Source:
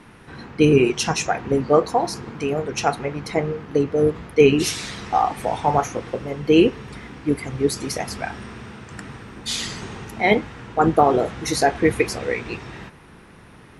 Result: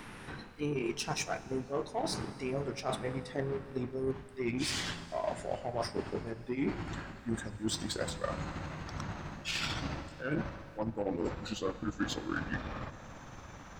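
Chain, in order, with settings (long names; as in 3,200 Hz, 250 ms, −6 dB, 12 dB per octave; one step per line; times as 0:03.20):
pitch glide at a constant tempo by −8 semitones starting unshifted
reversed playback
downward compressor 12 to 1, threshold −31 dBFS, peak gain reduction 21.5 dB
reversed playback
harmonic generator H 7 −27 dB, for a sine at −20.5 dBFS
background noise brown −58 dBFS
on a send at −14 dB: convolution reverb RT60 2.3 s, pre-delay 3 ms
on the sum: one half of a high-frequency compander encoder only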